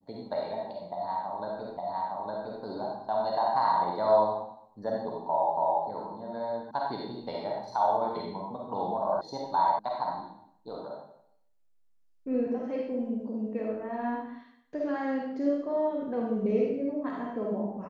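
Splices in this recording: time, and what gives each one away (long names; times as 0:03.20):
0:01.77: the same again, the last 0.86 s
0:05.57: the same again, the last 0.28 s
0:06.71: cut off before it has died away
0:09.21: cut off before it has died away
0:09.79: cut off before it has died away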